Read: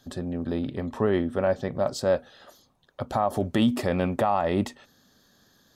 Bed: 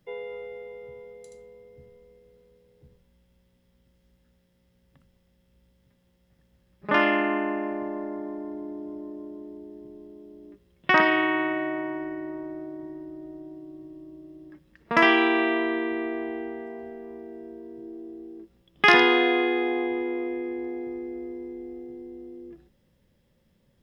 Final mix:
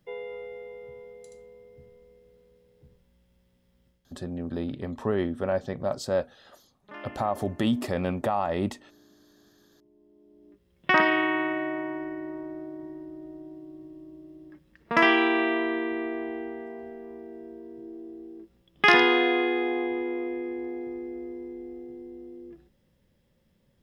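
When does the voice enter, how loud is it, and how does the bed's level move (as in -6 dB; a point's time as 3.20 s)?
4.05 s, -3.0 dB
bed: 3.88 s -1 dB
4.30 s -22 dB
9.65 s -22 dB
10.84 s -1.5 dB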